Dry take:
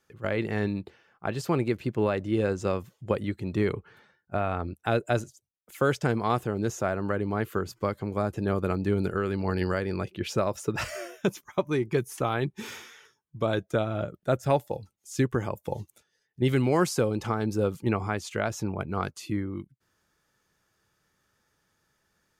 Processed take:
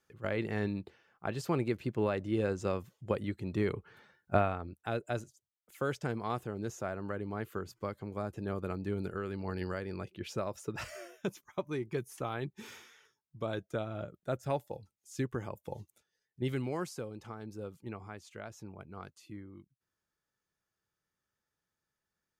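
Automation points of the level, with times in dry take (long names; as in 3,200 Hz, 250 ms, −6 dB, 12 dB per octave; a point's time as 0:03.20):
0:03.74 −5.5 dB
0:04.36 +2.5 dB
0:04.59 −9.5 dB
0:16.46 −9.5 dB
0:17.09 −16.5 dB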